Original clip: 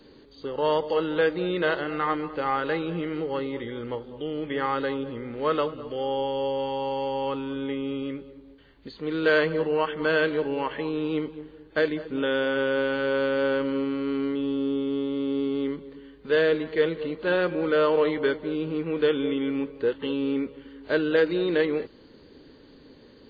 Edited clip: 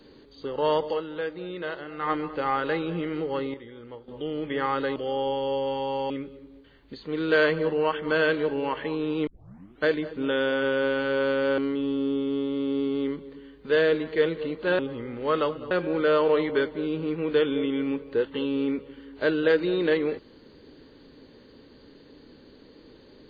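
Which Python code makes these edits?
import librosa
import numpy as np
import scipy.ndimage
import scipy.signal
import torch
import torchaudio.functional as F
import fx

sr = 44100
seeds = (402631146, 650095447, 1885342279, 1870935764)

y = fx.edit(x, sr, fx.fade_down_up(start_s=0.88, length_s=1.23, db=-8.5, fade_s=0.14),
    fx.clip_gain(start_s=3.54, length_s=0.54, db=-10.0),
    fx.move(start_s=4.96, length_s=0.92, to_s=17.39),
    fx.cut(start_s=7.02, length_s=1.02),
    fx.tape_start(start_s=11.21, length_s=0.58),
    fx.cut(start_s=13.52, length_s=0.66), tone=tone)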